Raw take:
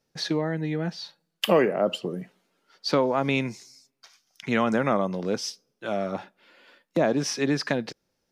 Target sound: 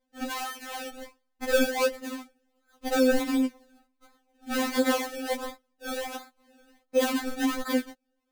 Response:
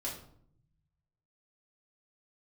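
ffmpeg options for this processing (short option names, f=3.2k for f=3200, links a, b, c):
-filter_complex "[0:a]asettb=1/sr,asplit=3[a][b][c];[a]atrim=end=3.464[d];[b]atrim=start=3.46:end=4.52,asetpts=PTS-STARTPTS,afade=t=in:d=0.004:c=qsin,afade=t=out:st=1.056:d=0.004:c=qsin,acompressor=threshold=-55dB:ratio=1.5[e];[c]atrim=start=4.516[f];[d][e]acrossfade=d=0.004:c1=hsin:c2=qsin[g];[g][f]acrossfade=d=0.004:c1=qsin:c2=hsin,acrusher=samples=30:mix=1:aa=0.000001:lfo=1:lforange=30:lforate=1.4,afftfilt=real='re*3.46*eq(mod(b,12),0)':imag='im*3.46*eq(mod(b,12),0)':win_size=2048:overlap=0.75"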